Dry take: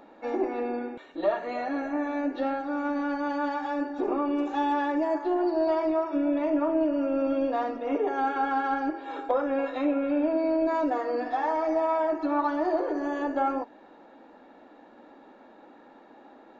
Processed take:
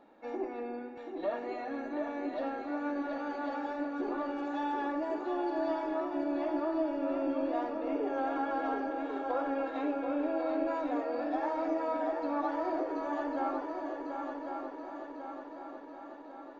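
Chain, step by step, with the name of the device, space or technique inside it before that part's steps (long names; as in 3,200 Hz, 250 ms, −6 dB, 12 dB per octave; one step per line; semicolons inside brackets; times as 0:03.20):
multi-head tape echo (echo machine with several playback heads 366 ms, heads second and third, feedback 62%, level −6.5 dB; tape wow and flutter 15 cents)
level −8.5 dB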